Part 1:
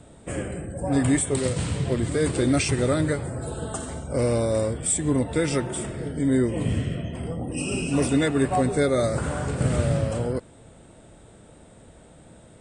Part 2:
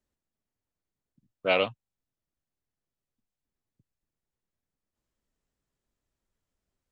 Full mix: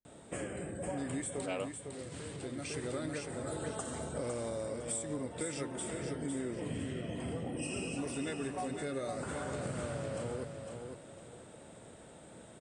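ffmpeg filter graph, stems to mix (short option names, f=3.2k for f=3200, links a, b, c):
-filter_complex "[0:a]highpass=f=220:p=1,acompressor=threshold=-34dB:ratio=6,adelay=50,volume=-2.5dB,asplit=2[a][b];[b]volume=-6dB[c];[1:a]acrossover=split=1400[d][e];[d]aeval=exprs='val(0)*(1-0.7/2+0.7/2*cos(2*PI*1.2*n/s))':c=same[f];[e]aeval=exprs='val(0)*(1-0.7/2-0.7/2*cos(2*PI*1.2*n/s))':c=same[g];[f][g]amix=inputs=2:normalize=0,volume=-11.5dB,asplit=2[h][i];[i]apad=whole_len=558005[j];[a][j]sidechaincompress=threshold=-51dB:ratio=8:attack=7:release=965[k];[c]aecho=0:1:505|1010|1515|2020:1|0.3|0.09|0.027[l];[k][h][l]amix=inputs=3:normalize=0"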